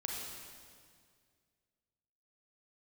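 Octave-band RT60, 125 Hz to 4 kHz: 2.5 s, 2.3 s, 2.2 s, 1.9 s, 1.8 s, 1.8 s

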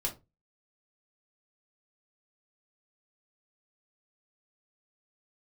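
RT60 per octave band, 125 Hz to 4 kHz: 0.35 s, 0.30 s, 0.25 s, 0.25 s, 0.20 s, 0.15 s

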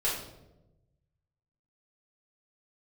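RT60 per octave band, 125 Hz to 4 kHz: 1.8 s, 1.3 s, 1.2 s, 0.80 s, 0.60 s, 0.60 s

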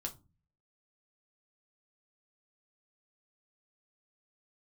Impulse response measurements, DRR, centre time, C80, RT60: 1.5 dB, 10 ms, 24.0 dB, 0.30 s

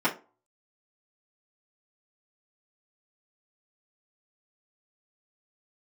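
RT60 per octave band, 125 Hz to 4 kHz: 0.25 s, 0.35 s, 0.35 s, 0.30 s, 0.25 s, 0.20 s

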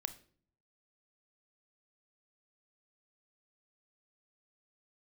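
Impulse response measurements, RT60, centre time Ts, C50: 0.50 s, 6 ms, 15.0 dB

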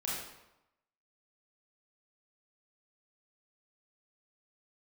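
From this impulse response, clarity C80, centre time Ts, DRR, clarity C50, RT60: 3.0 dB, 70 ms, -6.5 dB, -0.5 dB, 0.90 s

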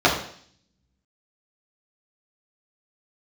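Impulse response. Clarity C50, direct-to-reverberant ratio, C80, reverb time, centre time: 6.5 dB, -6.0 dB, 10.0 dB, 0.55 s, 29 ms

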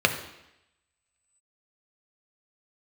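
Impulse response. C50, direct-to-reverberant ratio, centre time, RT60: 10.0 dB, 5.0 dB, 14 ms, 0.85 s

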